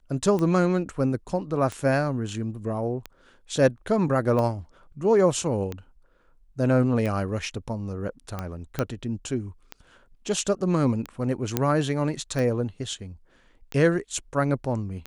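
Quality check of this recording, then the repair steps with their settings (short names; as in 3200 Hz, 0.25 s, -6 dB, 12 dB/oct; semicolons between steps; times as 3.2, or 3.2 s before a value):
tick 45 rpm -17 dBFS
8.79 pop -12 dBFS
11.57 pop -7 dBFS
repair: de-click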